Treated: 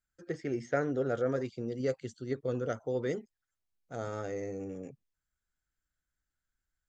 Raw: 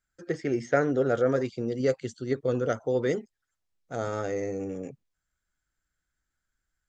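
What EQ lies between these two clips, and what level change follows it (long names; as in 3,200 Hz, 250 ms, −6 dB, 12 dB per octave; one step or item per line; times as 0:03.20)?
low-shelf EQ 170 Hz +3 dB
−7.0 dB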